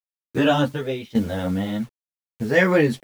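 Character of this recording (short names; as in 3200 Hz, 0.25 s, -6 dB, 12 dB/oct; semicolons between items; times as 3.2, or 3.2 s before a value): a quantiser's noise floor 8-bit, dither none; tremolo saw down 0.87 Hz, depth 85%; a shimmering, thickened sound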